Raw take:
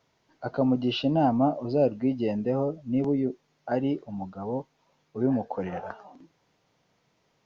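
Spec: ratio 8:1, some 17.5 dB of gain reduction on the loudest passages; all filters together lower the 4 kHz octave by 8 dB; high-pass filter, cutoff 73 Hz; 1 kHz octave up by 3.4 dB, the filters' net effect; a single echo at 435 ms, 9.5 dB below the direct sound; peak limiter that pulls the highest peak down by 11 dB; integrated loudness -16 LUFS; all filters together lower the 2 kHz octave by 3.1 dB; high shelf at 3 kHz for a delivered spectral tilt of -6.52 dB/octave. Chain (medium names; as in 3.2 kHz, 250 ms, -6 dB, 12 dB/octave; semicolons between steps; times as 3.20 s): high-pass 73 Hz; peaking EQ 1 kHz +6.5 dB; peaking EQ 2 kHz -4 dB; treble shelf 3 kHz -3.5 dB; peaking EQ 4 kHz -8 dB; compression 8:1, threshold -35 dBFS; peak limiter -34.5 dBFS; delay 435 ms -9.5 dB; trim +28 dB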